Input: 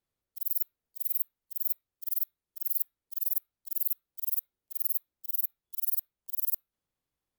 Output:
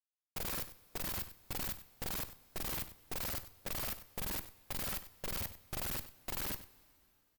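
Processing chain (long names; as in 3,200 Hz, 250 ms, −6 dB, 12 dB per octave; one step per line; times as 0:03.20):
noise gate with hold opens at −56 dBFS
power curve on the samples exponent 0.7
comparator with hysteresis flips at −39.5 dBFS
output level in coarse steps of 17 dB
on a send: single-tap delay 96 ms −14.5 dB
on the sum: coupled-rooms reverb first 0.28 s, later 2.8 s, from −16 dB, DRR 13.5 dB
level −4.5 dB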